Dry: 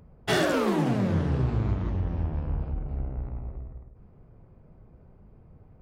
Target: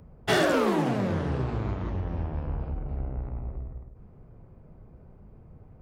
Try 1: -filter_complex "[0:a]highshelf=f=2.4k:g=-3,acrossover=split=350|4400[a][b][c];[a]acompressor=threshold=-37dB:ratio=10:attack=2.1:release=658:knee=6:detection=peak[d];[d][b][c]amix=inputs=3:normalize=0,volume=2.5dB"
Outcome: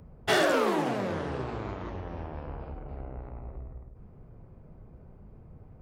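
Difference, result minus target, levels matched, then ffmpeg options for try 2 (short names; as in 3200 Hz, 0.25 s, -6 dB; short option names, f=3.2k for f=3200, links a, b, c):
compressor: peak gain reduction +9.5 dB
-filter_complex "[0:a]highshelf=f=2.4k:g=-3,acrossover=split=350|4400[a][b][c];[a]acompressor=threshold=-26.5dB:ratio=10:attack=2.1:release=658:knee=6:detection=peak[d];[d][b][c]amix=inputs=3:normalize=0,volume=2.5dB"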